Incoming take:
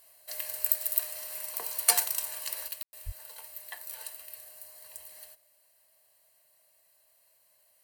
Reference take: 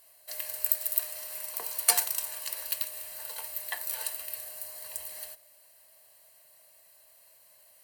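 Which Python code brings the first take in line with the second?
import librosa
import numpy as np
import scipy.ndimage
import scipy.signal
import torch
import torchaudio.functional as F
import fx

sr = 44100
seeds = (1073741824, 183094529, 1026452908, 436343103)

y = fx.fix_deplosive(x, sr, at_s=(3.05,))
y = fx.fix_ambience(y, sr, seeds[0], print_start_s=7.29, print_end_s=7.79, start_s=2.83, end_s=2.93)
y = fx.gain(y, sr, db=fx.steps((0.0, 0.0), (2.68, 7.5)))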